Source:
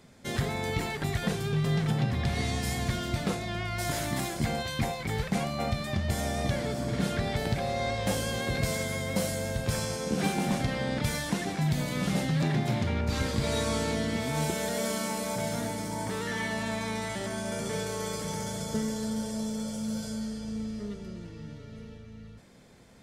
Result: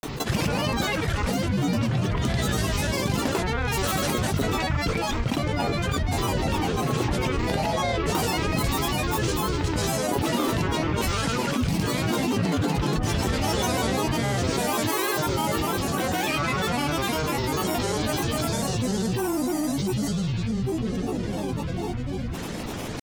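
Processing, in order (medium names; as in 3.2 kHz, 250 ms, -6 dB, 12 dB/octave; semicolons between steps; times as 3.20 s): granulator, pitch spread up and down by 12 st; level flattener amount 70%; trim +2 dB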